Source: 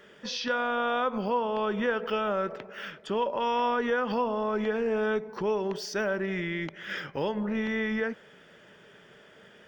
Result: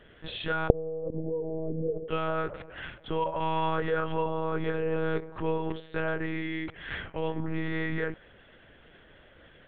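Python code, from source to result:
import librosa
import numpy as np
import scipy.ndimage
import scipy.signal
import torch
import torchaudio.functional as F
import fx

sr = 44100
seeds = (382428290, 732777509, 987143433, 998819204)

y = fx.steep_lowpass(x, sr, hz=560.0, slope=36, at=(0.67, 2.09), fade=0.02)
y = fx.lpc_monotone(y, sr, seeds[0], pitch_hz=160.0, order=10)
y = F.gain(torch.from_numpy(y), -1.0).numpy()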